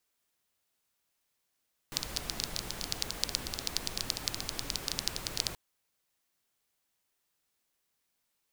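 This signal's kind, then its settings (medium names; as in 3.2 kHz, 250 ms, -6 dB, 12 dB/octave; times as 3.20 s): rain from filtered ticks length 3.63 s, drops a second 12, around 4.6 kHz, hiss -3 dB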